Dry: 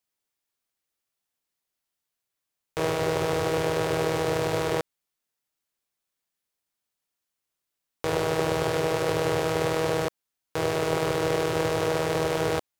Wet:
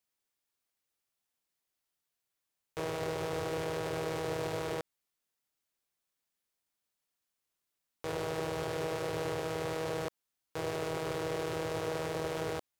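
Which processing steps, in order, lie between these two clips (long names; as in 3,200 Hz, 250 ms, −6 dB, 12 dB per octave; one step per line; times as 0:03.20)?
brickwall limiter −22.5 dBFS, peak gain reduction 11 dB
level −2 dB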